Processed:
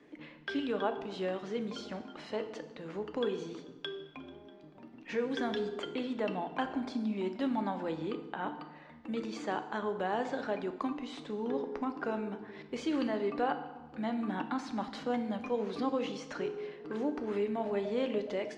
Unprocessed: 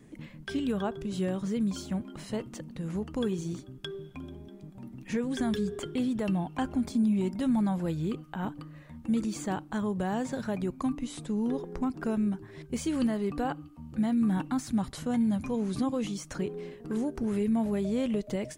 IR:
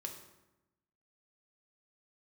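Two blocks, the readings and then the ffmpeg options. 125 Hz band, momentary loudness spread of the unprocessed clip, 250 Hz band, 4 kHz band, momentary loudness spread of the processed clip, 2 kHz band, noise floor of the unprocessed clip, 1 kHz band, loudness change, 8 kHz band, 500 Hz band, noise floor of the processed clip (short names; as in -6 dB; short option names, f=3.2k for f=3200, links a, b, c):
-12.5 dB, 13 LU, -7.5 dB, -0.5 dB, 11 LU, +1.5 dB, -50 dBFS, +1.5 dB, -4.5 dB, under -10 dB, +0.5 dB, -54 dBFS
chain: -filter_complex "[0:a]acrossover=split=300 5800:gain=0.0794 1 0.0891[a][b][c];[a][b][c]amix=inputs=3:normalize=0,asplit=2[d][e];[1:a]atrim=start_sample=2205,asetrate=34839,aresample=44100,lowpass=5.7k[f];[e][f]afir=irnorm=-1:irlink=0,volume=3.5dB[g];[d][g]amix=inputs=2:normalize=0,volume=-5dB"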